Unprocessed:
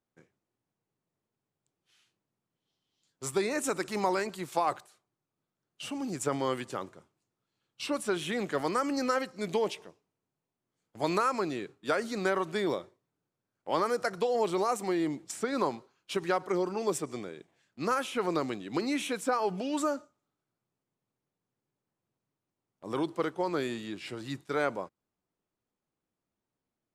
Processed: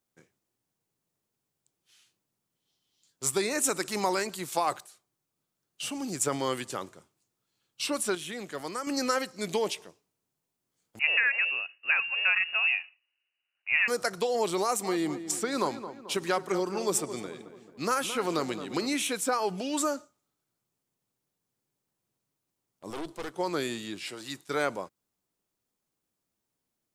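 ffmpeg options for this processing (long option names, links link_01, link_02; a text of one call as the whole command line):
ffmpeg -i in.wav -filter_complex "[0:a]asettb=1/sr,asplit=3[link_01][link_02][link_03];[link_01]atrim=end=10.994[link_04];[link_02]atrim=start=10.99:end=13.88,asetpts=PTS-STARTPTS,afade=type=in:duration=0.004:curve=qsin,afade=type=out:start_time=2.886:duration=0.004:curve=qsin,lowpass=frequency=2600:width_type=q:width=0.5098,lowpass=frequency=2600:width_type=q:width=0.6013,lowpass=frequency=2600:width_type=q:width=0.9,lowpass=frequency=2600:width_type=q:width=2.563,afreqshift=-3000[link_05];[link_03]atrim=start=13.876[link_06];[link_04][link_05]acrossfade=duration=0.004:curve1=hsin:curve2=qsin[link_07];[link_07][link_06]acrossfade=duration=0.004:curve1=qsin:curve2=hsin,asettb=1/sr,asplit=3[link_08][link_09][link_10];[link_08]atrim=end=14.634[link_11];[link_09]atrim=start=14.63:end=18.95,asetpts=PTS-STARTPTS,afade=type=in:duration=0.004:curve=qsin,afade=type=out:start_time=4.316:duration=0.004:curve=qsin,asplit=2[link_12][link_13];[link_13]adelay=219,lowpass=frequency=2000:poles=1,volume=-11dB,asplit=2[link_14][link_15];[link_15]adelay=219,lowpass=frequency=2000:poles=1,volume=0.5,asplit=2[link_16][link_17];[link_17]adelay=219,lowpass=frequency=2000:poles=1,volume=0.5,asplit=2[link_18][link_19];[link_19]adelay=219,lowpass=frequency=2000:poles=1,volume=0.5,asplit=2[link_20][link_21];[link_21]adelay=219,lowpass=frequency=2000:poles=1,volume=0.5[link_22];[link_12][link_14][link_16][link_18][link_20][link_22]amix=inputs=6:normalize=0,atrim=end_sample=190512[link_23];[link_10]atrim=start=18.946[link_24];[link_11][link_23]acrossfade=duration=0.004:curve1=hsin:curve2=qsin[link_25];[link_25][link_24]acrossfade=duration=0.004:curve1=qsin:curve2=hsin,asettb=1/sr,asplit=3[link_26][link_27][link_28];[link_26]atrim=end=22.904[link_29];[link_27]atrim=start=22.9:end=23.34,asetpts=PTS-STARTPTS,afade=type=in:duration=0.004:curve=qsin,afade=type=out:start_time=0.436:duration=0.004:curve=qsin,aeval=exprs='(tanh(44.7*val(0)+0.7)-tanh(0.7))/44.7':channel_layout=same[link_30];[link_28]atrim=start=23.336[link_31];[link_29][link_30]acrossfade=duration=0.004:curve1=hsin:curve2=qsin[link_32];[link_32][link_31]acrossfade=duration=0.004:curve1=qsin:curve2=hsin,asettb=1/sr,asplit=3[link_33][link_34][link_35];[link_33]atrim=end=24.044[link_36];[link_34]atrim=start=24.04:end=24.47,asetpts=PTS-STARTPTS,afade=type=in:duration=0.004:curve=qsin,afade=type=out:start_time=0.426:duration=0.004:curve=qsin,highpass=frequency=360:poles=1[link_37];[link_35]atrim=start=24.466[link_38];[link_36][link_37]acrossfade=duration=0.004:curve1=hsin:curve2=qsin[link_39];[link_39][link_38]acrossfade=duration=0.004:curve1=qsin:curve2=hsin,asplit=3[link_40][link_41][link_42];[link_40]atrim=end=8.152[link_43];[link_41]atrim=start=8.148:end=8.872,asetpts=PTS-STARTPTS,volume=-7dB[link_44];[link_42]atrim=start=8.868[link_45];[link_43][link_44]acrossfade=duration=0.004:curve1=hsin:curve2=hsin[link_46];[link_46][link_45]acrossfade=duration=0.004:curve1=hsin:curve2=hsin,highshelf=frequency=3700:gain=11" out.wav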